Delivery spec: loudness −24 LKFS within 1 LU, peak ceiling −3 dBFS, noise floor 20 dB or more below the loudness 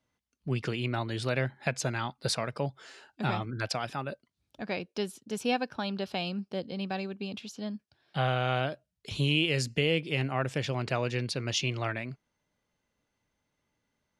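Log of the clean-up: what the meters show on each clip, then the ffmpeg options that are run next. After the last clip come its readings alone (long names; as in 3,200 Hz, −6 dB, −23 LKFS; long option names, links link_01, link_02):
integrated loudness −32.0 LKFS; sample peak −11.5 dBFS; target loudness −24.0 LKFS
→ -af "volume=8dB"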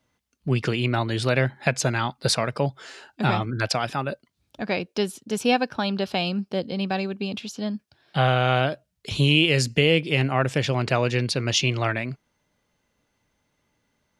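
integrated loudness −24.0 LKFS; sample peak −3.5 dBFS; background noise floor −75 dBFS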